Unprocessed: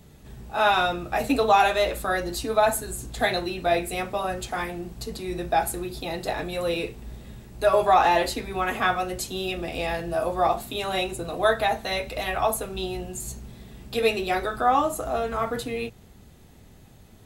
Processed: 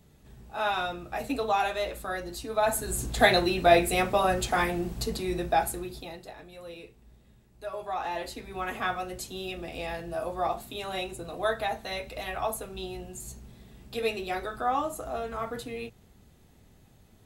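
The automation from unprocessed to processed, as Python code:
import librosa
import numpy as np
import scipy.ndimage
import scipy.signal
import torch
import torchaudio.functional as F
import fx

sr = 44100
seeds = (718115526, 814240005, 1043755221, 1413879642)

y = fx.gain(x, sr, db=fx.line((2.51, -8.0), (2.99, 3.5), (5.0, 3.5), (5.96, -6.0), (6.32, -17.0), (7.77, -17.0), (8.64, -7.0)))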